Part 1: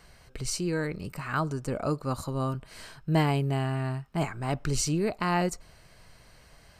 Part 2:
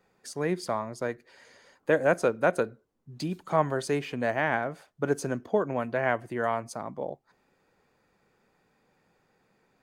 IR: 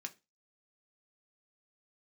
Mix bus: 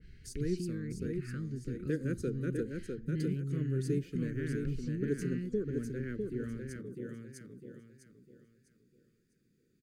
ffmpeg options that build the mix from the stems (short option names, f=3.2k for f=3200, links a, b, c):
-filter_complex "[0:a]lowpass=3.7k,lowshelf=f=380:g=10,acompressor=threshold=-31dB:ratio=3,volume=-6.5dB[a];[1:a]equalizer=f=2.2k:w=0.7:g=-13.5,volume=-3dB,asplit=2[b][c];[c]volume=-4.5dB,aecho=0:1:652|1304|1956|2608|3260:1|0.32|0.102|0.0328|0.0105[d];[a][b][d]amix=inputs=3:normalize=0,asuperstop=centerf=810:order=8:qfactor=0.7,adynamicequalizer=threshold=0.00158:dfrequency=1900:dqfactor=0.7:tfrequency=1900:tqfactor=0.7:attack=5:release=100:ratio=0.375:range=3:mode=cutabove:tftype=highshelf"